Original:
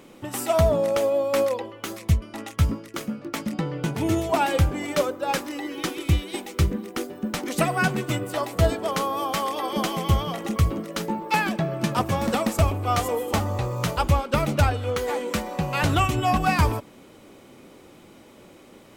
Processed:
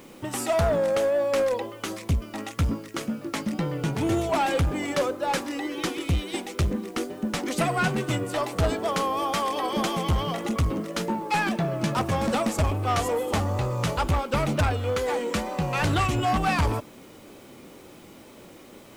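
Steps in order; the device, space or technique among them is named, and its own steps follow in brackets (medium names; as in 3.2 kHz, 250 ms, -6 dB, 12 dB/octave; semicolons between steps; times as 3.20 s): compact cassette (saturation -19.5 dBFS, distortion -11 dB; low-pass 11 kHz 12 dB/octave; wow and flutter; white noise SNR 33 dB); trim +1.5 dB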